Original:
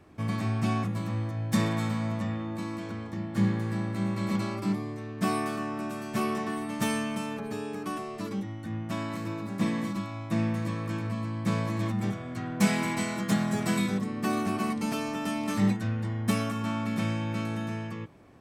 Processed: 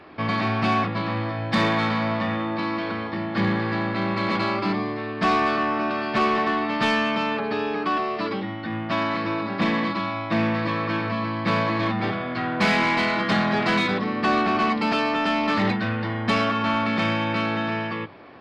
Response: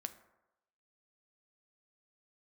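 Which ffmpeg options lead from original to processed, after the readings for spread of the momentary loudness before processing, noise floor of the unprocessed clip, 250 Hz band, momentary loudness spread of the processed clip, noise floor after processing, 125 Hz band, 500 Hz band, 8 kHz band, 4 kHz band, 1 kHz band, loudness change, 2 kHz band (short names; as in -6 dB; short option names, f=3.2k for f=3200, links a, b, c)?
8 LU, -38 dBFS, +4.0 dB, 6 LU, -31 dBFS, +0.5 dB, +9.5 dB, n/a, +11.0 dB, +12.0 dB, +7.0 dB, +12.5 dB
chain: -filter_complex "[0:a]aresample=11025,aresample=44100,bandreject=f=50:t=h:w=6,bandreject=f=100:t=h:w=6,bandreject=f=150:t=h:w=6,bandreject=f=200:t=h:w=6,asplit=2[a][b];[b]highpass=f=720:p=1,volume=19dB,asoftclip=type=tanh:threshold=-13.5dB[c];[a][c]amix=inputs=2:normalize=0,lowpass=f=3.7k:p=1,volume=-6dB,volume=2.5dB"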